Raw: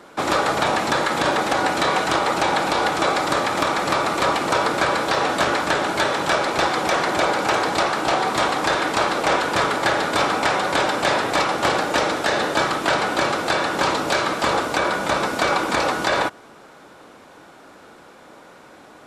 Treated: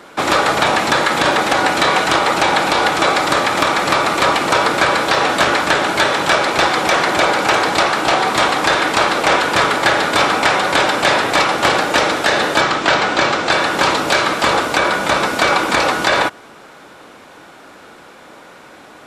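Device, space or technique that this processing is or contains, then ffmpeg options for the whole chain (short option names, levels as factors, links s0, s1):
presence and air boost: -filter_complex "[0:a]equalizer=f=2500:t=o:w=1.8:g=4,highshelf=f=9700:g=3.5,asettb=1/sr,asplit=3[s0][s1][s2];[s0]atrim=end=12.614[s3];[s1]atrim=start=12.61:end=13.51,asetpts=PTS-STARTPTS,afade=t=in:d=0.004:c=qsin,afade=t=out:st=0.896:d=0.004:c=qsin,lowpass=f=7500:w=0.5412,lowpass=f=7500:w=1.3066[s4];[s2]atrim=start=13.506[s5];[s3][s4]acrossfade=d=0.004:c1=hsin:c2=qsin[s6];[s6][s5]acrossfade=d=0.004:c1=qsin:c2=hsin,volume=1.58"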